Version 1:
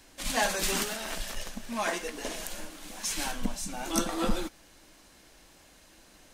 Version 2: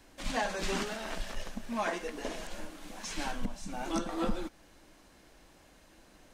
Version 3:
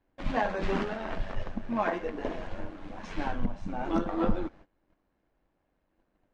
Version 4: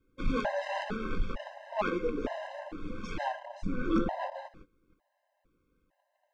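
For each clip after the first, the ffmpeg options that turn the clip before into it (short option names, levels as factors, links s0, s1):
-filter_complex "[0:a]acrossover=split=7800[s0][s1];[s1]acompressor=threshold=0.00282:ratio=4:attack=1:release=60[s2];[s0][s2]amix=inputs=2:normalize=0,highshelf=f=2400:g=-8,alimiter=limit=0.0891:level=0:latency=1:release=308"
-af "tremolo=f=94:d=0.4,adynamicsmooth=sensitivity=0.5:basefreq=2000,agate=range=0.1:threshold=0.00158:ratio=16:detection=peak,volume=2.24"
-af "asoftclip=type=tanh:threshold=0.0668,afftfilt=real='re*gt(sin(2*PI*1.1*pts/sr)*(1-2*mod(floor(b*sr/1024/530),2)),0)':imag='im*gt(sin(2*PI*1.1*pts/sr)*(1-2*mod(floor(b*sr/1024/530),2)),0)':win_size=1024:overlap=0.75,volume=1.68"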